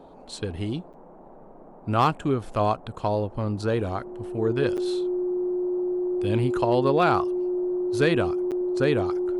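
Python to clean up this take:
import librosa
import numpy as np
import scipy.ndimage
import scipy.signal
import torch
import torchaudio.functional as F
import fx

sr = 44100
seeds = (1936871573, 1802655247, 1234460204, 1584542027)

y = fx.fix_declip(x, sr, threshold_db=-11.5)
y = fx.notch(y, sr, hz=360.0, q=30.0)
y = fx.fix_interpolate(y, sr, at_s=(0.93, 4.77, 8.51), length_ms=7.9)
y = fx.noise_reduce(y, sr, print_start_s=0.92, print_end_s=1.42, reduce_db=23.0)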